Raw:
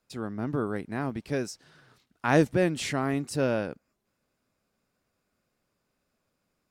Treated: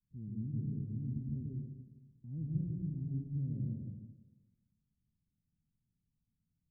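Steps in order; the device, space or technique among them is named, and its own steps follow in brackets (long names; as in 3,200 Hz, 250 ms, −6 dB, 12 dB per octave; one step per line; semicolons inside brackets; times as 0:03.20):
club heard from the street (brickwall limiter −20.5 dBFS, peak gain reduction 10 dB; low-pass filter 180 Hz 24 dB per octave; convolution reverb RT60 1.2 s, pre-delay 119 ms, DRR −2.5 dB)
level −3 dB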